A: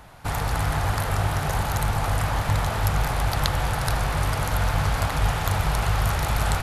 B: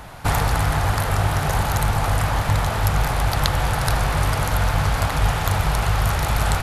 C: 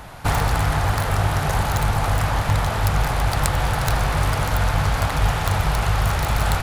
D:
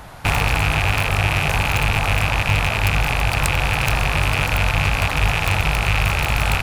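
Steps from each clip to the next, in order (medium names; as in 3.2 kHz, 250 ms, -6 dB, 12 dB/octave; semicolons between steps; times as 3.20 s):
gain riding 0.5 s; trim +3.5 dB
self-modulated delay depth 0.082 ms
rattle on loud lows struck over -26 dBFS, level -8 dBFS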